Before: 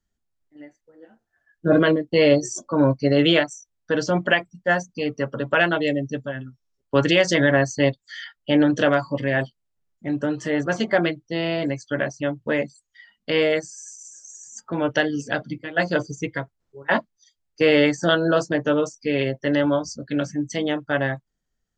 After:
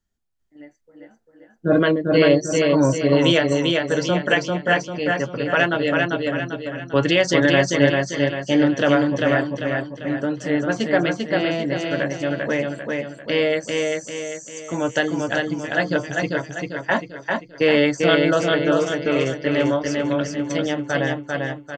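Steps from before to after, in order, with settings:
repeating echo 395 ms, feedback 44%, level −3 dB

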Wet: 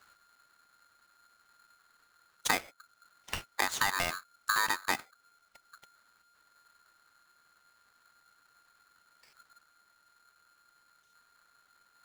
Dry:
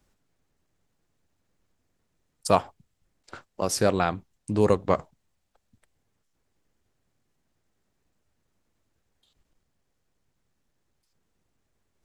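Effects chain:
low-pass filter 4,700 Hz 12 dB per octave
downward compressor 10 to 1, threshold −33 dBFS, peak gain reduction 19 dB
ring modulator with a square carrier 1,400 Hz
level +6.5 dB

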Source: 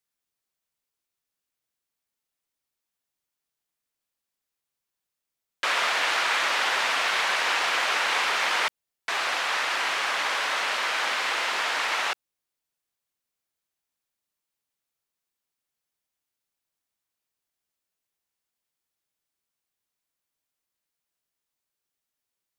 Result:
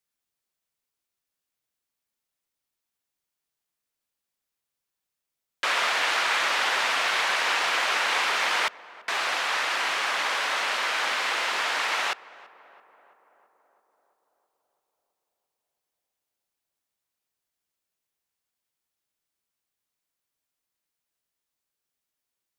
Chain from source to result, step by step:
tape delay 333 ms, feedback 73%, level −19 dB, low-pass 1,600 Hz

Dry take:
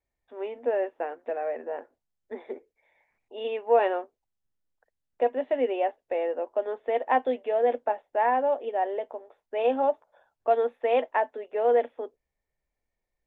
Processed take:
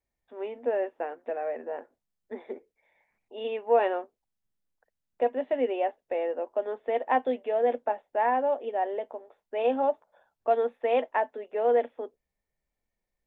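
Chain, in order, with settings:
parametric band 200 Hz +6 dB 0.5 octaves
level −1.5 dB

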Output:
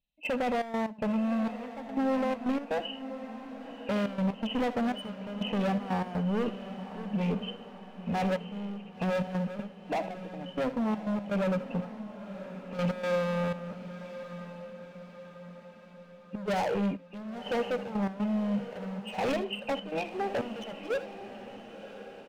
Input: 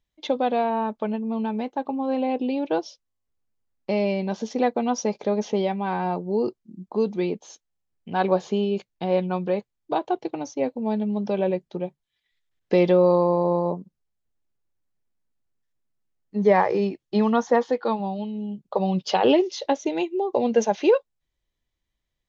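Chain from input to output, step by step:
hearing-aid frequency compression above 2,400 Hz 4 to 1
in parallel at −2 dB: downward compressor, threshold −28 dBFS, peak gain reduction 14.5 dB
on the sum: soft clipping −17 dBFS, distortion −11 dB
high-pass filter 52 Hz 6 dB per octave
low-shelf EQ 240 Hz +6.5 dB
phaser with its sweep stopped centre 350 Hz, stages 6
gain into a clipping stage and back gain 27 dB
on a send: ambience of single reflections 64 ms −17 dB, 79 ms −15.5 dB
on the sum: gate pattern "..xxx.x.xxxx.." 122 BPM −12 dB
feedback delay with all-pass diffusion 1,047 ms, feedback 54%, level −12 dB

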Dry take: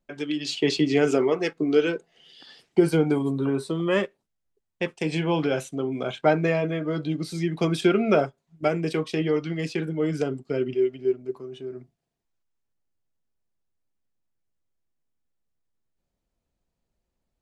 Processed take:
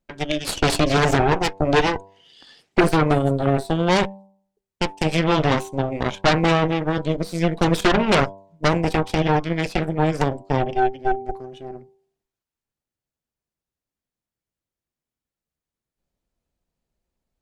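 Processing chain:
harmonic generator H 8 −8 dB, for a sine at −7 dBFS
hum removal 97.34 Hz, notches 11

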